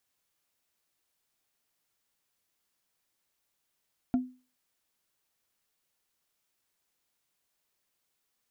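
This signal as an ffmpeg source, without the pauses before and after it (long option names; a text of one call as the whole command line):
ffmpeg -f lavfi -i "aevalsrc='0.1*pow(10,-3*t/0.34)*sin(2*PI*253*t)+0.0266*pow(10,-3*t/0.101)*sin(2*PI*697.5*t)+0.00708*pow(10,-3*t/0.045)*sin(2*PI*1367.2*t)+0.00188*pow(10,-3*t/0.025)*sin(2*PI*2260*t)+0.000501*pow(10,-3*t/0.015)*sin(2*PI*3375*t)':duration=0.45:sample_rate=44100" out.wav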